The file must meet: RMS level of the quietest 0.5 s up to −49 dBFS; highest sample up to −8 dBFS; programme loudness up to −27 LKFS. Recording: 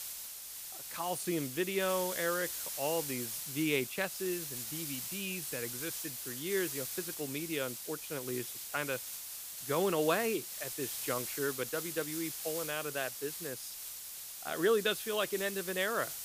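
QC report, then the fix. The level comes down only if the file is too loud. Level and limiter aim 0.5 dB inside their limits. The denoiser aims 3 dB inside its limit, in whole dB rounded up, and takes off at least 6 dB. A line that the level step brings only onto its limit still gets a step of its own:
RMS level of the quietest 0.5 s −46 dBFS: out of spec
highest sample −15.5 dBFS: in spec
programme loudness −35.0 LKFS: in spec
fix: broadband denoise 6 dB, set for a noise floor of −46 dBFS

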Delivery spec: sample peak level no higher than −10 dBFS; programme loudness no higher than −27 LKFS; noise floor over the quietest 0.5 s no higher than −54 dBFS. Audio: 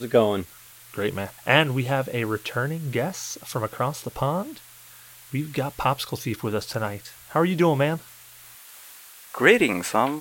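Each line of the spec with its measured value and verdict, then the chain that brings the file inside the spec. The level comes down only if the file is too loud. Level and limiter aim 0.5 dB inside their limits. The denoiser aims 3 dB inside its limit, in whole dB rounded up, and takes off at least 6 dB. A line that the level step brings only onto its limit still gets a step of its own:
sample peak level −3.0 dBFS: out of spec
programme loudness −24.5 LKFS: out of spec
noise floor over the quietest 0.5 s −48 dBFS: out of spec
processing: broadband denoise 6 dB, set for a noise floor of −48 dBFS
level −3 dB
brickwall limiter −10.5 dBFS

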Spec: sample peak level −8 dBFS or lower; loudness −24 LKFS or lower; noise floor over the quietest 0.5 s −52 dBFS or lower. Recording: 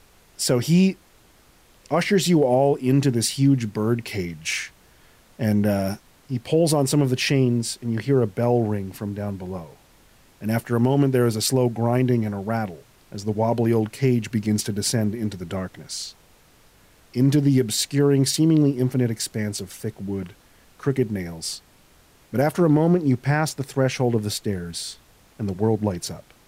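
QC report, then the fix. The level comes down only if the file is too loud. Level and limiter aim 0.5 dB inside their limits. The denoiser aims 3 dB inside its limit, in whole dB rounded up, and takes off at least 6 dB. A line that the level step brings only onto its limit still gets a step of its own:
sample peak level −8.5 dBFS: in spec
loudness −22.5 LKFS: out of spec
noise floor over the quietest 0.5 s −55 dBFS: in spec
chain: level −2 dB

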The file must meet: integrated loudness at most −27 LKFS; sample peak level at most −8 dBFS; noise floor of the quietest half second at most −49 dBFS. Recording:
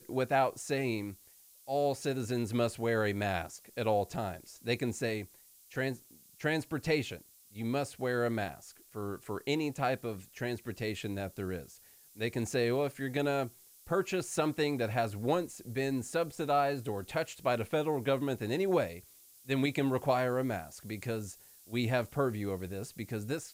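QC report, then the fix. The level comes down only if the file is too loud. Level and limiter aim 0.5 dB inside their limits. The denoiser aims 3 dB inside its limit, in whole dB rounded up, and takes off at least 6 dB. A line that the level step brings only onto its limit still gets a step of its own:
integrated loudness −34.0 LKFS: in spec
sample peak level −17.5 dBFS: in spec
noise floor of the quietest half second −60 dBFS: in spec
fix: no processing needed

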